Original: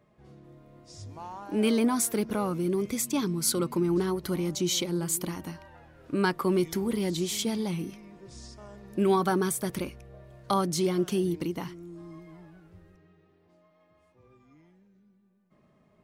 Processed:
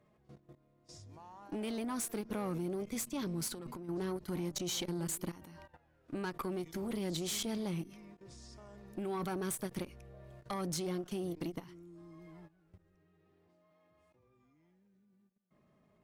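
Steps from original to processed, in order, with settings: level quantiser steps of 17 dB; tube stage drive 29 dB, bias 0.5; 3.48–3.89 negative-ratio compressor -42 dBFS, ratio -0.5; ending taper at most 360 dB/s

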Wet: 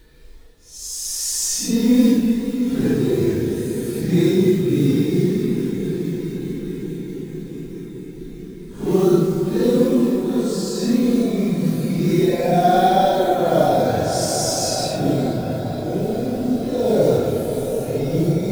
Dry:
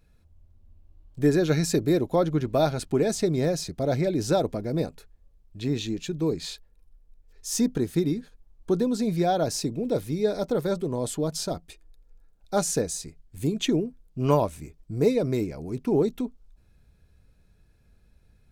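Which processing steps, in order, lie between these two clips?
spring tank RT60 1.9 s, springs 33 ms, chirp 40 ms, DRR 2.5 dB; companded quantiser 6-bit; Paulstretch 6.5×, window 0.05 s, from 7.33; gain +5.5 dB

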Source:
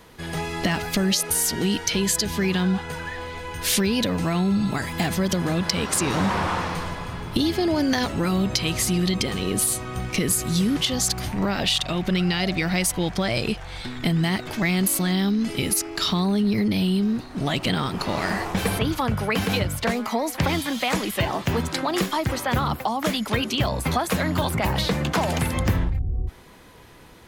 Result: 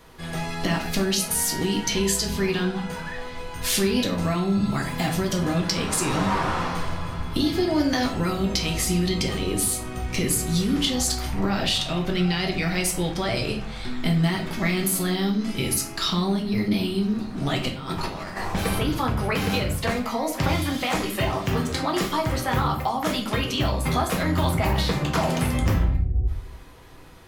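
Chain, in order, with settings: 17.68–18.37 negative-ratio compressor -30 dBFS, ratio -0.5; shoebox room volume 53 m³, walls mixed, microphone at 0.62 m; gain -3.5 dB

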